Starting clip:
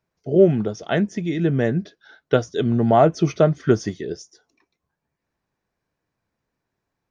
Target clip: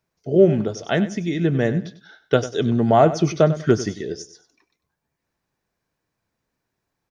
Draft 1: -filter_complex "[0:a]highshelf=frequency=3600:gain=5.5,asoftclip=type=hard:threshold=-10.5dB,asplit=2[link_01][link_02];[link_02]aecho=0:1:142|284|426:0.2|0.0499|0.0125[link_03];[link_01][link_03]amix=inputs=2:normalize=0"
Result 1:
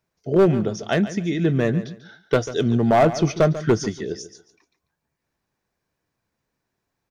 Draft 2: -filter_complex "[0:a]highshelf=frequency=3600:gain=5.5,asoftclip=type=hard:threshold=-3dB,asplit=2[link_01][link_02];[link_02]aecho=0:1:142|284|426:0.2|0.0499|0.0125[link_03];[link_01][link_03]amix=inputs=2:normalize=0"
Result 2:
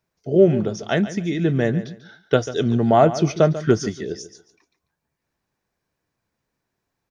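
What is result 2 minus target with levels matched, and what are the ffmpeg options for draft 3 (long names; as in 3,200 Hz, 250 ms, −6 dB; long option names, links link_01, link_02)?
echo 45 ms late
-filter_complex "[0:a]highshelf=frequency=3600:gain=5.5,asoftclip=type=hard:threshold=-3dB,asplit=2[link_01][link_02];[link_02]aecho=0:1:97|194|291:0.2|0.0499|0.0125[link_03];[link_01][link_03]amix=inputs=2:normalize=0"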